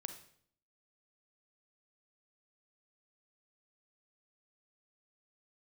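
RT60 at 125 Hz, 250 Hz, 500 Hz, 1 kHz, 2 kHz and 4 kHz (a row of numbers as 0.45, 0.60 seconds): 0.75, 0.75, 0.65, 0.55, 0.55, 0.55 seconds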